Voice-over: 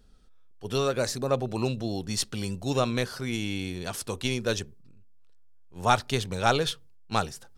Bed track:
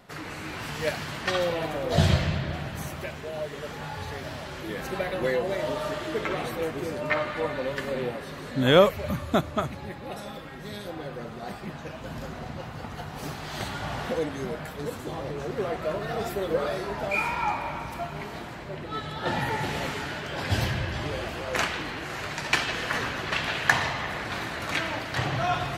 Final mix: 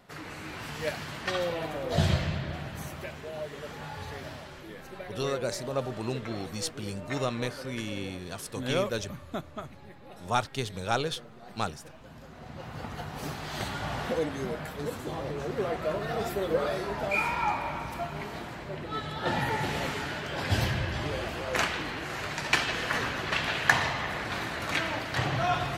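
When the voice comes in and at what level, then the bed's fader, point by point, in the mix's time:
4.45 s, -5.0 dB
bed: 4.25 s -4 dB
4.84 s -12 dB
12.26 s -12 dB
12.78 s -1 dB

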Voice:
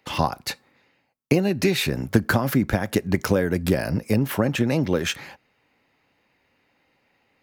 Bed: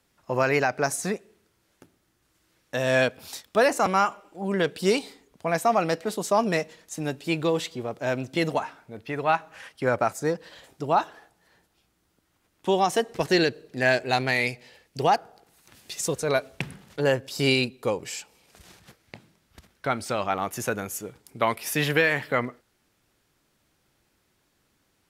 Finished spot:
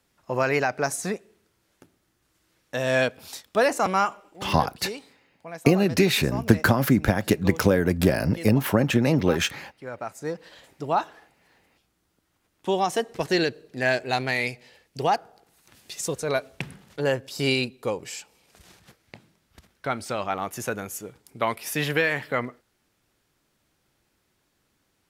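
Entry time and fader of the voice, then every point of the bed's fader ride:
4.35 s, +1.0 dB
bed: 4.29 s -0.5 dB
4.55 s -13 dB
9.89 s -13 dB
10.46 s -1.5 dB

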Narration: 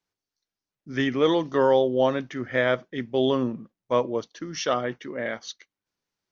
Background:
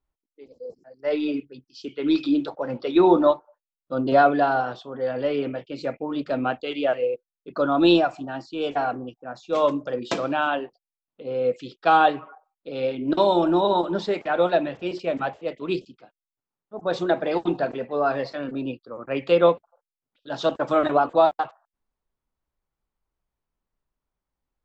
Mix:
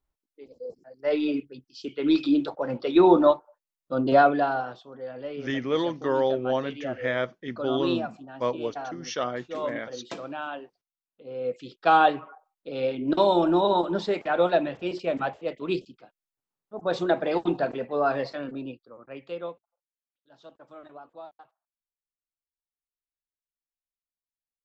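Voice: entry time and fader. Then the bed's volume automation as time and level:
4.50 s, -4.5 dB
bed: 4.14 s -0.5 dB
5.07 s -11 dB
11.16 s -11 dB
11.86 s -1.5 dB
18.29 s -1.5 dB
19.97 s -26 dB

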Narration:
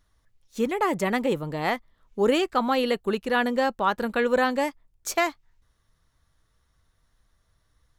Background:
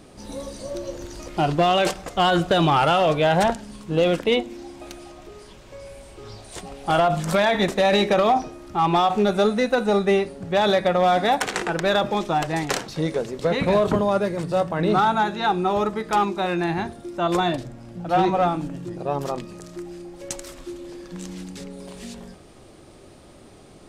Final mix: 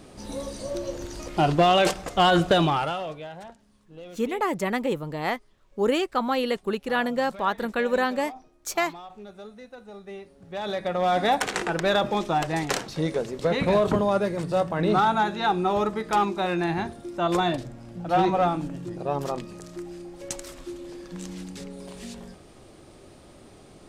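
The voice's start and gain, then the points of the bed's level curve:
3.60 s, -1.5 dB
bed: 2.53 s 0 dB
3.40 s -23.5 dB
9.96 s -23.5 dB
11.23 s -2 dB

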